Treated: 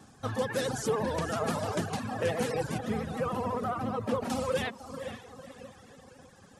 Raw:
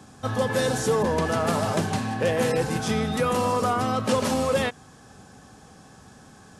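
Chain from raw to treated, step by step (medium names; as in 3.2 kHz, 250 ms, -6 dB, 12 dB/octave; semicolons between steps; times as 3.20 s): 2.78–4.30 s: peaking EQ 6.8 kHz -14.5 dB 2.5 oct; echo that smears into a reverb 489 ms, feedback 45%, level -9 dB; vibrato 14 Hz 81 cents; reverb removal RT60 1 s; trim -5.5 dB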